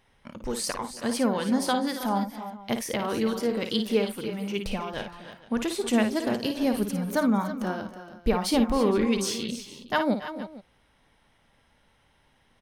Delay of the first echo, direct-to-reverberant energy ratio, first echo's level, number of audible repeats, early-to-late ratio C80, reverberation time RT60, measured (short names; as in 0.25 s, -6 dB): 55 ms, none, -8.0 dB, 4, none, none